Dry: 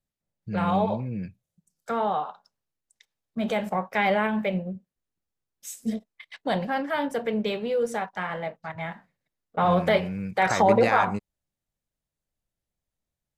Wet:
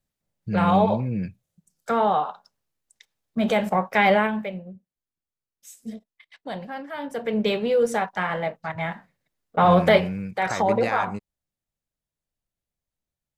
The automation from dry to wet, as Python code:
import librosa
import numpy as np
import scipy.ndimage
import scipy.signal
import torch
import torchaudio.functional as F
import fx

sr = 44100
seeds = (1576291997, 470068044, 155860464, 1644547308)

y = fx.gain(x, sr, db=fx.line((4.16, 5.0), (4.56, -7.0), (6.94, -7.0), (7.46, 5.0), (9.98, 5.0), (10.39, -2.5)))